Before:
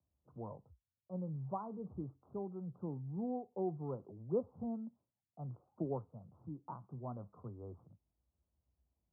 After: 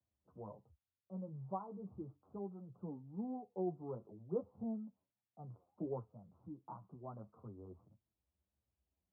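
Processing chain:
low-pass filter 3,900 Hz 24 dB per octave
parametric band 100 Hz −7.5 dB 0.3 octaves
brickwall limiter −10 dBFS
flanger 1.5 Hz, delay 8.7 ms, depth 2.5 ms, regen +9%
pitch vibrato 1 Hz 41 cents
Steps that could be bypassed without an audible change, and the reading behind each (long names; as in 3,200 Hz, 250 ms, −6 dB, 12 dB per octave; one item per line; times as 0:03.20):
low-pass filter 3,900 Hz: nothing at its input above 1,200 Hz
brickwall limiter −10 dBFS: peak of its input −24.5 dBFS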